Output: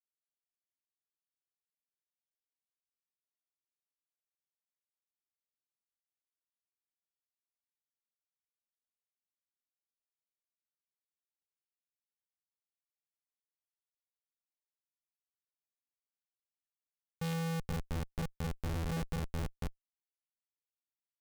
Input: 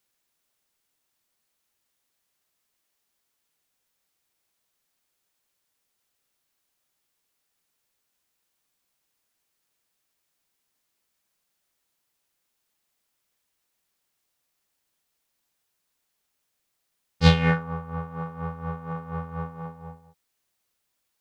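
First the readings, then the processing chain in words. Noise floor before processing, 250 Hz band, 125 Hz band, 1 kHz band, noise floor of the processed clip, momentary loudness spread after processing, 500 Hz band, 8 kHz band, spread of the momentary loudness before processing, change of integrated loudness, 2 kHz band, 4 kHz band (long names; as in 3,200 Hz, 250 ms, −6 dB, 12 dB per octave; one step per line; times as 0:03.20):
−78 dBFS, −11.5 dB, −11.5 dB, −14.0 dB, below −85 dBFS, 5 LU, −12.0 dB, can't be measured, 19 LU, −12.0 dB, −15.5 dB, −15.5 dB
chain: slap from a distant wall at 260 metres, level −14 dB
log-companded quantiser 4 bits
comparator with hysteresis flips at −26 dBFS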